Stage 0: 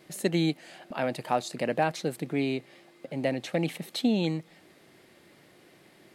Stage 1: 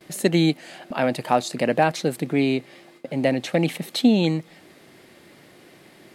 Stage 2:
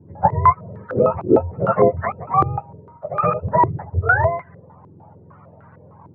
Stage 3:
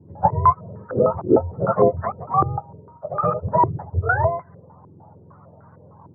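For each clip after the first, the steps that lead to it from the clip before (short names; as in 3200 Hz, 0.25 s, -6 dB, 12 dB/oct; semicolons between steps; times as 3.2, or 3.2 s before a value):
gate with hold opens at -47 dBFS; bell 250 Hz +2.5 dB 0.2 oct; gain +7 dB
spectrum mirrored in octaves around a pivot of 570 Hz; stepped low-pass 6.6 Hz 350–1500 Hz; gain +1.5 dB
LPF 1400 Hz 24 dB/oct; gain -1.5 dB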